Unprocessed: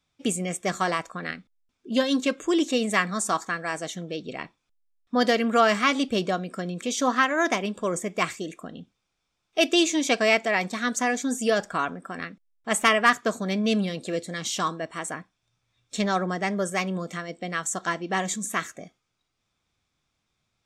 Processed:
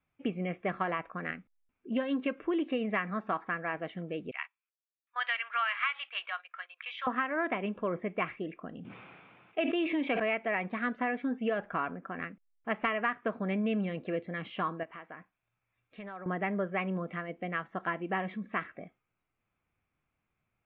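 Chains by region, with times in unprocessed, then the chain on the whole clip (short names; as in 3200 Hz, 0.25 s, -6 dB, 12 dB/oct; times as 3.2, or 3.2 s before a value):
4.31–7.07 HPF 1000 Hz 24 dB/oct + tilt +4 dB/oct + gate -43 dBFS, range -13 dB
8.79–10.2 HPF 120 Hz 24 dB/oct + sustainer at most 23 dB/s
14.83–16.26 low shelf 440 Hz -7 dB + compressor 4:1, threshold -37 dBFS
whole clip: steep low-pass 2800 Hz 48 dB/oct; compressor, threshold -23 dBFS; gain -4 dB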